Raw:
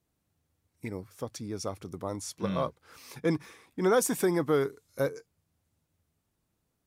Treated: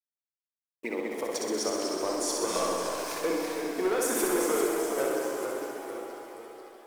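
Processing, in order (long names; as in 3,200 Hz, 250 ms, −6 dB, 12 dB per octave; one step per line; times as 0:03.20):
high-pass filter 320 Hz 24 dB per octave
downward expander −54 dBFS
gate on every frequency bin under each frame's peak −30 dB strong
leveller curve on the samples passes 2
downward compressor, threshold −29 dBFS, peak gain reduction 10 dB
pitch-shifted copies added +3 semitones −17 dB
bit-depth reduction 10 bits, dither none
on a send: flutter between parallel walls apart 10.8 metres, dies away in 1.1 s
on the sum: delay with pitch and tempo change per echo 146 ms, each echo −1 semitone, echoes 3, each echo −6 dB
reverb with rising layers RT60 3.5 s, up +7 semitones, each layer −8 dB, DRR 5 dB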